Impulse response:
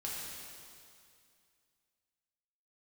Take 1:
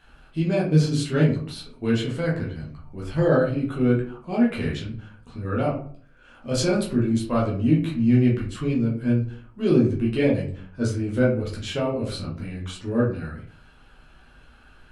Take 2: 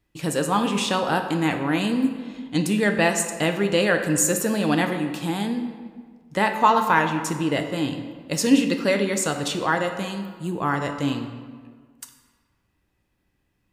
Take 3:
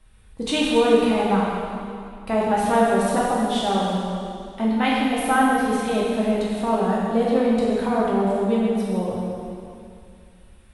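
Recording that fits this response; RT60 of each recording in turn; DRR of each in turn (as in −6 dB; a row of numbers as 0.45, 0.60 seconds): 3; 0.50, 1.6, 2.3 seconds; −5.0, 5.5, −6.0 decibels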